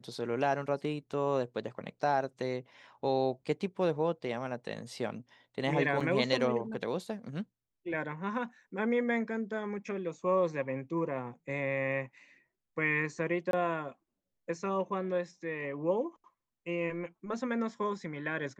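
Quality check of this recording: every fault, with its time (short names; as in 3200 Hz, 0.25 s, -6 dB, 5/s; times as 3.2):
6–6.01 gap 5.3 ms
13.51–13.53 gap 22 ms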